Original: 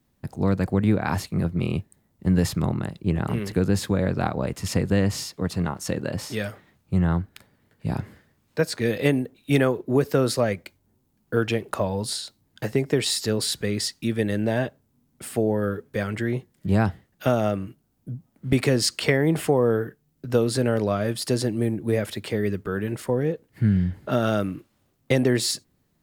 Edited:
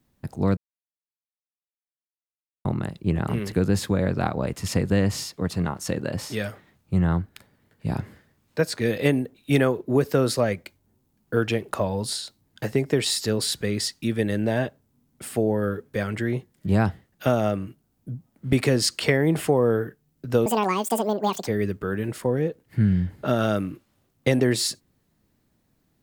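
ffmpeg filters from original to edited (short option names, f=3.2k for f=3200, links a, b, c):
-filter_complex "[0:a]asplit=5[a][b][c][d][e];[a]atrim=end=0.57,asetpts=PTS-STARTPTS,afade=t=out:st=0.566:d=0.004:c=hsin[f];[b]atrim=start=0.57:end=2.65,asetpts=PTS-STARTPTS,volume=0[g];[c]atrim=start=2.65:end=20.464,asetpts=PTS-STARTPTS,afade=t=in:d=0.004:c=hsin[h];[d]atrim=start=20.46:end=22.31,asetpts=PTS-STARTPTS,asetrate=80703,aresample=44100[i];[e]atrim=start=22.306[j];[f][g][h]concat=n=3:v=0:a=1[k];[k][i]acrossfade=d=0.004:c1=hsin:c2=hsin[l];[l][j]acrossfade=d=0.004:c1=hsin:c2=hsin"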